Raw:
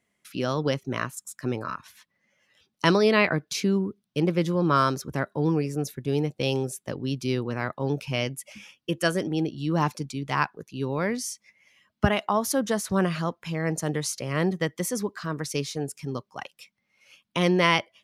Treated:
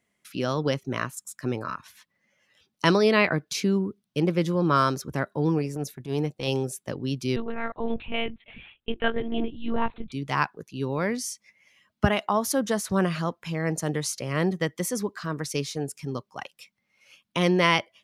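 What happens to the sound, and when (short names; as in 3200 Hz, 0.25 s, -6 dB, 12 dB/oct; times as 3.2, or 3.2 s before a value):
5.58–6.48 transient shaper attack -10 dB, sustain -2 dB
7.36–10.12 monotone LPC vocoder at 8 kHz 230 Hz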